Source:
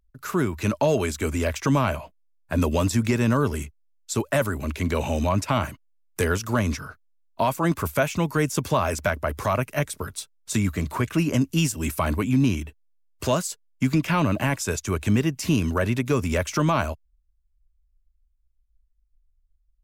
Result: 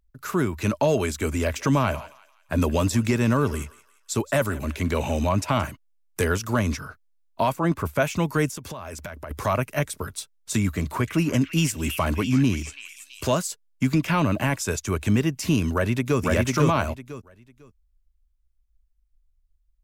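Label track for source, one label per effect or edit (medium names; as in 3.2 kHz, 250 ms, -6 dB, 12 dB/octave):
1.350000	5.650000	thinning echo 173 ms, feedback 44%, high-pass 1 kHz, level -17 dB
7.520000	8.000000	treble shelf 2.9 kHz -9 dB
8.500000	9.310000	compression 8:1, threshold -32 dBFS
10.750000	13.280000	repeats whose band climbs or falls 330 ms, band-pass from 2.3 kHz, each repeat 0.7 oct, level -4 dB
15.730000	16.210000	echo throw 500 ms, feedback 20%, level -1 dB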